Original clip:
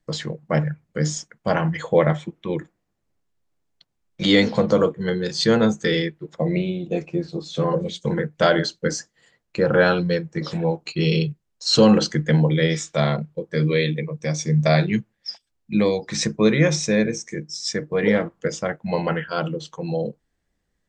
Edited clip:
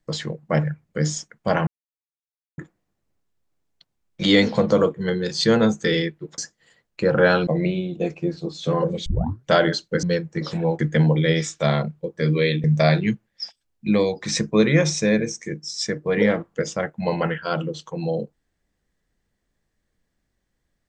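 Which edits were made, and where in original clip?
1.67–2.58 mute
7.97 tape start 0.42 s
8.94–10.03 move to 6.38
10.79–12.13 cut
13.98–14.5 cut

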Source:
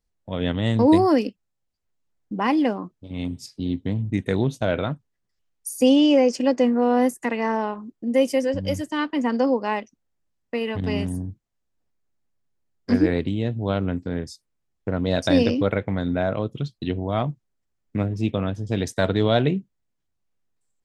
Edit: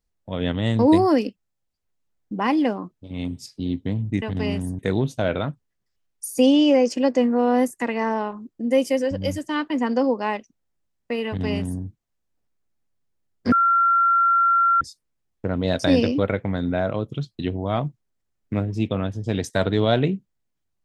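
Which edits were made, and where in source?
10.69–11.26 copy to 4.22
12.95–14.24 bleep 1370 Hz -14.5 dBFS

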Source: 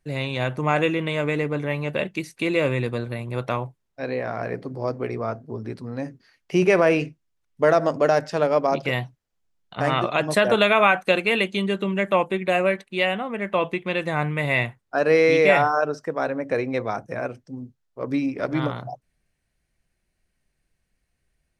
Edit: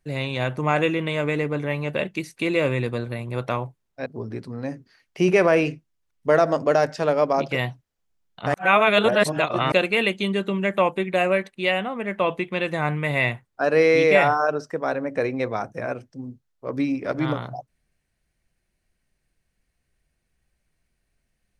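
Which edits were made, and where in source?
4.06–5.4 cut
9.88–11.06 reverse

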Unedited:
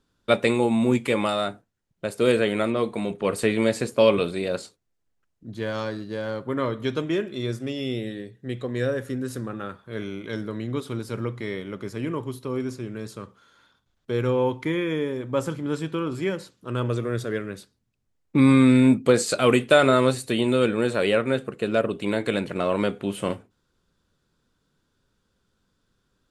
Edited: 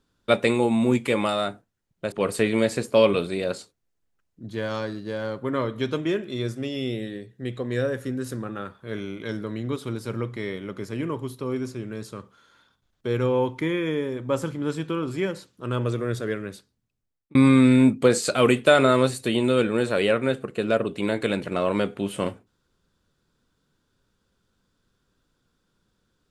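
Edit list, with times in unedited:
2.12–3.16 cut
17.41–18.39 fade out equal-power

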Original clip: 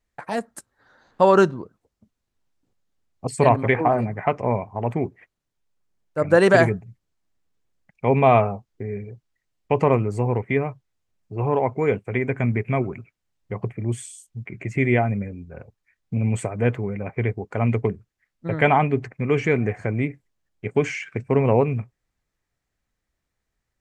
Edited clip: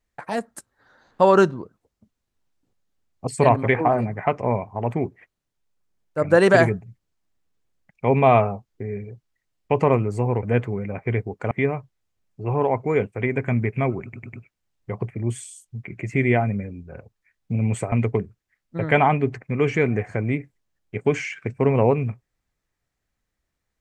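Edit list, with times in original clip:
12.95 stutter 0.10 s, 4 plays
16.54–17.62 move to 10.43

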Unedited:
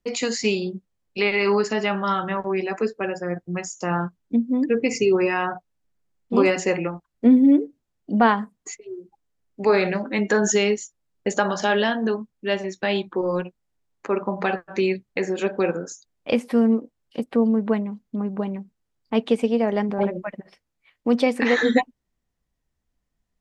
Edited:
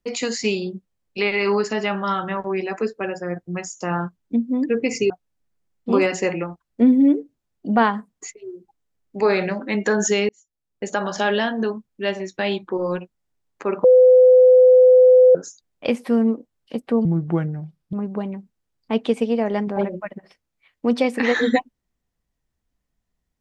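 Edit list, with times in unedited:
5.1–5.54 cut
10.73–11.63 fade in linear
14.28–15.79 bleep 507 Hz -7.5 dBFS
17.49–18.15 speed 75%

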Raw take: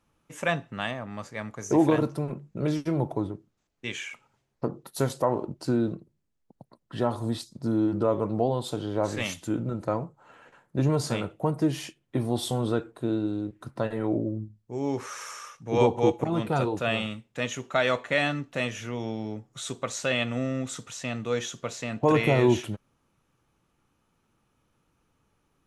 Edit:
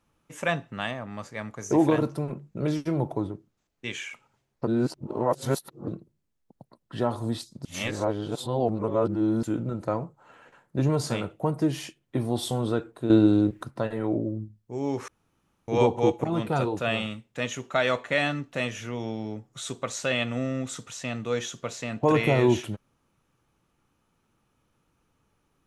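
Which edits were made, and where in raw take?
4.67–5.88 reverse
7.65–9.43 reverse
13.1–13.63 gain +10 dB
15.08–15.68 room tone

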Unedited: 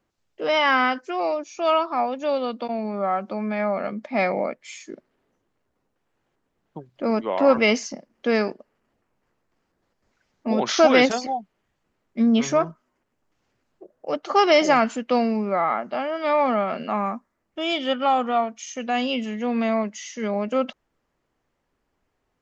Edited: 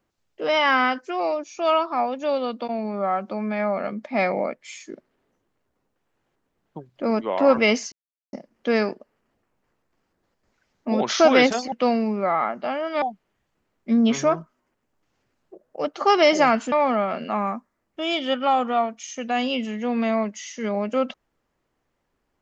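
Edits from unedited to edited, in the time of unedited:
7.92 insert silence 0.41 s
15.01–16.31 move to 11.31

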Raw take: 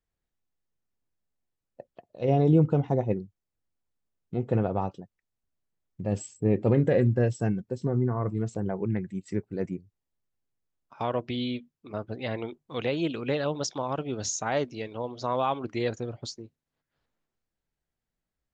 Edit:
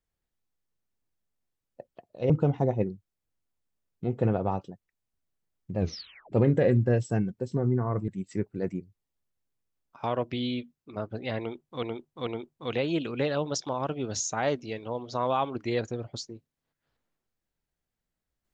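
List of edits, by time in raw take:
2.3–2.6 cut
6.08 tape stop 0.54 s
8.38–9.05 cut
12.36–12.8 loop, 3 plays

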